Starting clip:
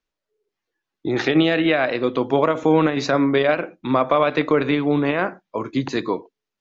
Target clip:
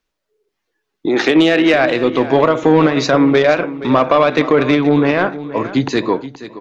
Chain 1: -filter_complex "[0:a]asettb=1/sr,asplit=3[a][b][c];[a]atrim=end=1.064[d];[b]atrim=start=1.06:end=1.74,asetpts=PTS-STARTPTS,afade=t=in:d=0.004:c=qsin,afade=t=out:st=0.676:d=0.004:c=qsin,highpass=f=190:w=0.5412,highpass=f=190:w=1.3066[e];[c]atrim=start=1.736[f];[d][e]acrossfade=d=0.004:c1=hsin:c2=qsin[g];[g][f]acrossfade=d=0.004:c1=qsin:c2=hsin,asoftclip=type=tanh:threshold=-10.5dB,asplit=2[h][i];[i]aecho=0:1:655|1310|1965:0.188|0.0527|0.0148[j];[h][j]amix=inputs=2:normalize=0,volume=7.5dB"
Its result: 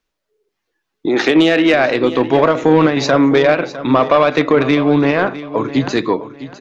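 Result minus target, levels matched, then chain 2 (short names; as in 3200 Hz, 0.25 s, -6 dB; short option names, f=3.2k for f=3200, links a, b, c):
echo 0.18 s late
-filter_complex "[0:a]asettb=1/sr,asplit=3[a][b][c];[a]atrim=end=1.064[d];[b]atrim=start=1.06:end=1.74,asetpts=PTS-STARTPTS,afade=t=in:d=0.004:c=qsin,afade=t=out:st=0.676:d=0.004:c=qsin,highpass=f=190:w=0.5412,highpass=f=190:w=1.3066[e];[c]atrim=start=1.736[f];[d][e]acrossfade=d=0.004:c1=hsin:c2=qsin[g];[g][f]acrossfade=d=0.004:c1=qsin:c2=hsin,asoftclip=type=tanh:threshold=-10.5dB,asplit=2[h][i];[i]aecho=0:1:475|950|1425:0.188|0.0527|0.0148[j];[h][j]amix=inputs=2:normalize=0,volume=7.5dB"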